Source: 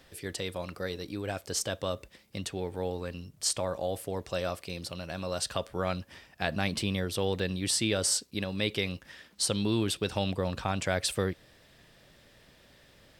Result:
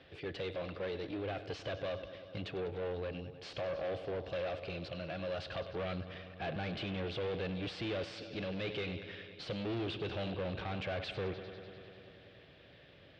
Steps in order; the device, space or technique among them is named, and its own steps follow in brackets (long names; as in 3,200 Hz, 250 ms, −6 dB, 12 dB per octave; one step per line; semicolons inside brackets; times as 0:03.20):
analogue delay pedal into a guitar amplifier (bucket-brigade delay 99 ms, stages 4,096, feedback 79%, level −18.5 dB; tube saturation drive 38 dB, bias 0.55; loudspeaker in its box 80–3,400 Hz, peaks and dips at 220 Hz −8 dB, 940 Hz −8 dB, 1,300 Hz −4 dB, 1,900 Hz −4 dB)
level +5 dB